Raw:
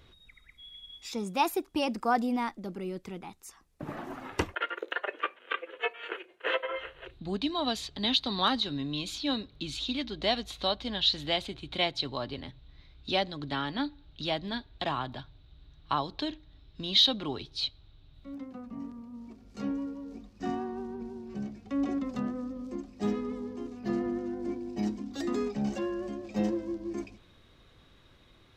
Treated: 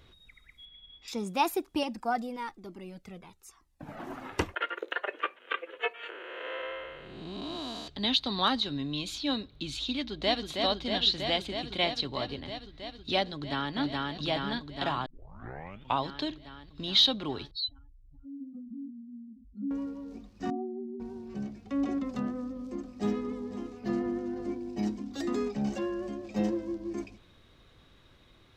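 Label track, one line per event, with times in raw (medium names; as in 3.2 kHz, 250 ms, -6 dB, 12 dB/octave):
0.650000	1.080000	distance through air 220 m
1.830000	4.000000	Shepard-style flanger falling 1.1 Hz
6.100000	7.880000	spectral blur width 395 ms
9.940000	10.450000	echo throw 320 ms, feedback 85%, level -4.5 dB
13.340000	13.750000	echo throw 420 ms, feedback 75%, level -1 dB
15.060000	15.060000	tape start 0.97 s
17.510000	19.710000	spectral contrast enhancement exponent 3.6
20.500000	21.000000	spectral contrast enhancement exponent 2.9
22.270000	24.480000	delay 503 ms -13.5 dB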